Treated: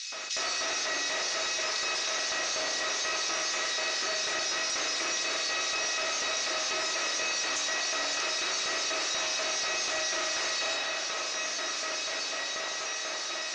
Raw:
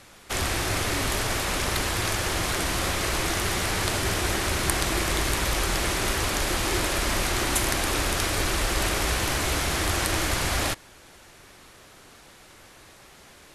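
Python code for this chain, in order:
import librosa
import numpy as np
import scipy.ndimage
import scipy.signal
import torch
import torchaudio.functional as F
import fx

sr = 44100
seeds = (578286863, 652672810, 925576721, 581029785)

y = scipy.signal.sosfilt(scipy.signal.butter(2, 140.0, 'highpass', fs=sr, output='sos'), x)
y = fx.low_shelf(y, sr, hz=240.0, db=-6.5)
y = fx.notch(y, sr, hz=3200.0, q=15.0)
y = fx.comb_fb(y, sr, f0_hz=640.0, decay_s=0.32, harmonics='all', damping=0.0, mix_pct=90)
y = fx.echo_diffused(y, sr, ms=1625, feedback_pct=56, wet_db=-10.0)
y = fx.filter_lfo_highpass(y, sr, shape='square', hz=4.1, low_hz=380.0, high_hz=4000.0, q=1.0)
y = fx.rev_spring(y, sr, rt60_s=1.6, pass_ms=(38, 52), chirp_ms=35, drr_db=0.5)
y = fx.fold_sine(y, sr, drive_db=5, ceiling_db=-27.5)
y = scipy.signal.sosfilt(scipy.signal.ellip(4, 1.0, 60, 6100.0, 'lowpass', fs=sr, output='sos'), y)
y = fx.high_shelf(y, sr, hz=3700.0, db=11.0)
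y = fx.env_flatten(y, sr, amount_pct=70)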